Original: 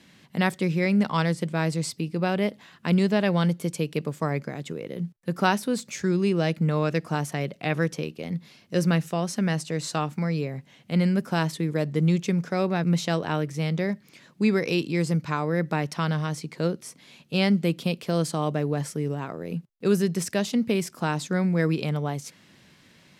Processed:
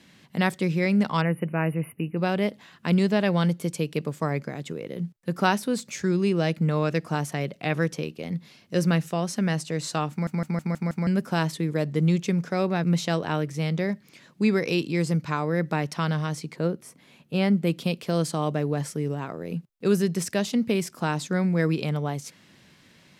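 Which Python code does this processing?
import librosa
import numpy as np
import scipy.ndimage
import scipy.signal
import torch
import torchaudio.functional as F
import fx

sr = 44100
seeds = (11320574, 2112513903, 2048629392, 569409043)

y = fx.spec_erase(x, sr, start_s=1.21, length_s=0.97, low_hz=3000.0, high_hz=9500.0)
y = fx.peak_eq(y, sr, hz=5000.0, db=-8.5, octaves=2.0, at=(16.56, 17.67))
y = fx.edit(y, sr, fx.stutter_over(start_s=10.11, slice_s=0.16, count=6), tone=tone)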